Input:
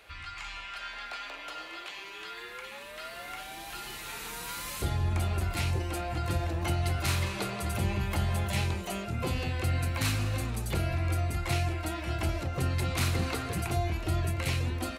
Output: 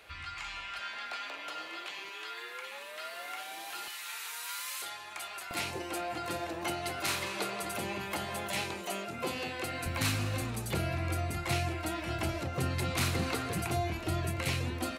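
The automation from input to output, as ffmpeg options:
-af "asetnsamples=n=441:p=0,asendcmd='0.79 highpass f 130;2.09 highpass f 400;3.88 highpass f 1100;5.51 highpass f 280;9.86 highpass f 110',highpass=53"

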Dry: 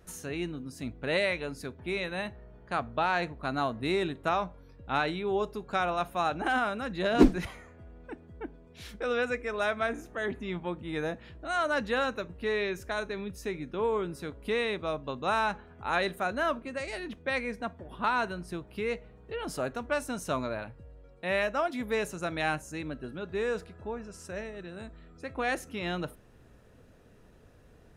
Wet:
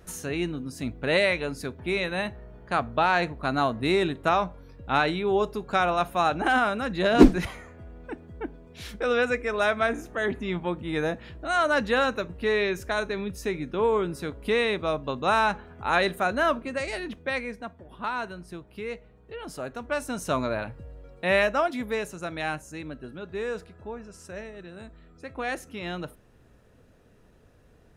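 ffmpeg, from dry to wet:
-af "volume=15dB,afade=t=out:st=16.85:d=0.81:silence=0.398107,afade=t=in:st=19.64:d=1.08:silence=0.334965,afade=t=out:st=21.34:d=0.7:silence=0.421697"

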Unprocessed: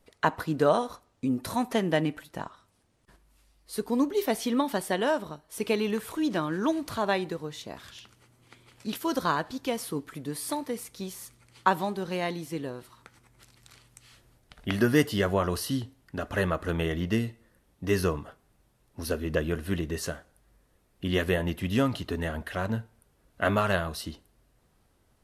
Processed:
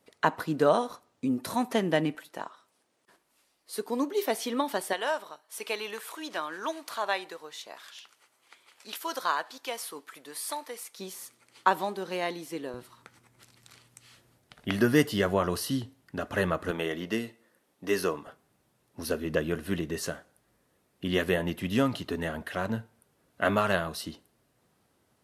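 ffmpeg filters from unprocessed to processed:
-af "asetnsamples=n=441:p=0,asendcmd='2.15 highpass f 330;4.93 highpass f 690;10.99 highpass f 290;12.74 highpass f 110;16.71 highpass f 280;18.27 highpass f 130',highpass=150"

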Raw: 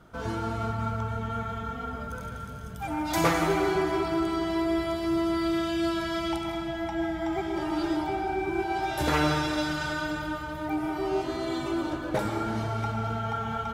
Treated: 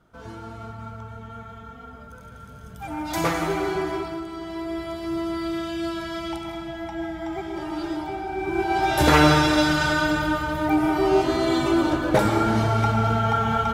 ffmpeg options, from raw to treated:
-af "volume=16dB,afade=t=in:st=2.23:d=0.77:silence=0.446684,afade=t=out:st=3.91:d=0.34:silence=0.446684,afade=t=in:st=4.25:d=0.93:silence=0.501187,afade=t=in:st=8.31:d=0.68:silence=0.316228"

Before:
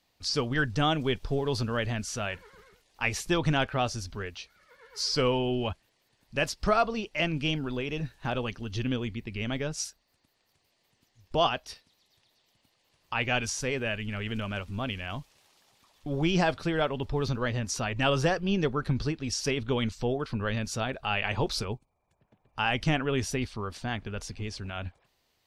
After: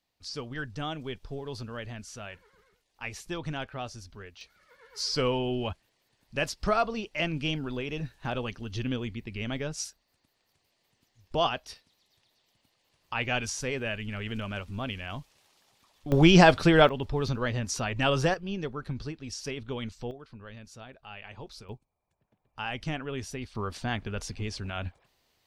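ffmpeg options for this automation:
-af "asetnsamples=n=441:p=0,asendcmd='4.41 volume volume -1.5dB;16.12 volume volume 8.5dB;16.89 volume volume 0dB;18.34 volume volume -7dB;20.11 volume volume -15.5dB;21.69 volume volume -7dB;23.55 volume volume 1.5dB',volume=-9dB"

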